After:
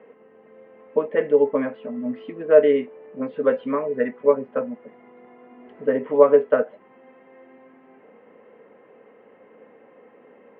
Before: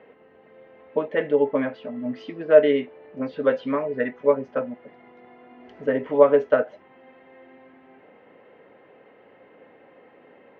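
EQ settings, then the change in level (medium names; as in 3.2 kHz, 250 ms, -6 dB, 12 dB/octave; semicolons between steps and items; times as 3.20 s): cabinet simulation 110–3000 Hz, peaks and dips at 220 Hz +8 dB, 460 Hz +7 dB, 1.1 kHz +5 dB; -2.5 dB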